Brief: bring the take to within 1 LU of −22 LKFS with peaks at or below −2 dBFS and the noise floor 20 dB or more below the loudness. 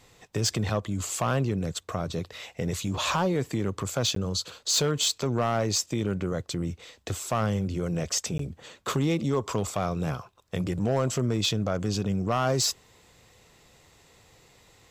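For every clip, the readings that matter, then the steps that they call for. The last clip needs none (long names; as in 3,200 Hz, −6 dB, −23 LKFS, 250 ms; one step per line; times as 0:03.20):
share of clipped samples 0.6%; peaks flattened at −18.0 dBFS; number of dropouts 2; longest dropout 13 ms; integrated loudness −28.0 LKFS; sample peak −18.0 dBFS; target loudness −22.0 LKFS
→ clipped peaks rebuilt −18 dBFS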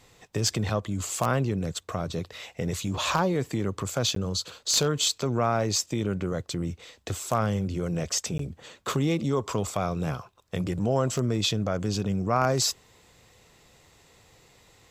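share of clipped samples 0.0%; number of dropouts 2; longest dropout 13 ms
→ repair the gap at 0:04.15/0:08.38, 13 ms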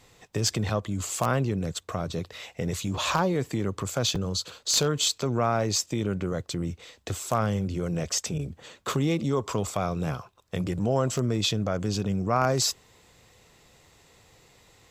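number of dropouts 0; integrated loudness −27.5 LKFS; sample peak −9.0 dBFS; target loudness −22.0 LKFS
→ level +5.5 dB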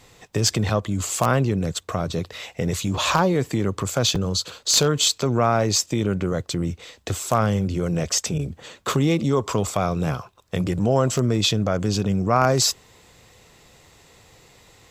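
integrated loudness −22.0 LKFS; sample peak −3.5 dBFS; background noise floor −55 dBFS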